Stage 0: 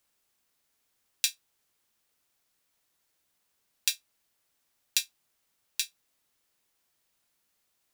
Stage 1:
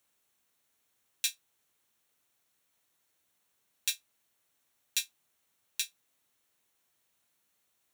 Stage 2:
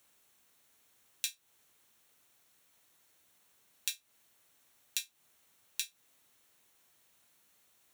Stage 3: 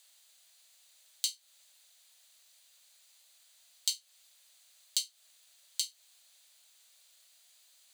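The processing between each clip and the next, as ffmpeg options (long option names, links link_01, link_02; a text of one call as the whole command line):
ffmpeg -i in.wav -af "alimiter=limit=-9.5dB:level=0:latency=1:release=16,highpass=61,bandreject=frequency=4900:width=6.9" out.wav
ffmpeg -i in.wav -af "acompressor=threshold=-39dB:ratio=10,volume=7dB" out.wav
ffmpeg -i in.wav -af "afreqshift=480,alimiter=limit=-14.5dB:level=0:latency=1:release=107,equalizer=frequency=250:width_type=o:width=1:gain=9,equalizer=frequency=1000:width_type=o:width=1:gain=-5,equalizer=frequency=4000:width_type=o:width=1:gain=10,equalizer=frequency=8000:width_type=o:width=1:gain=7" out.wav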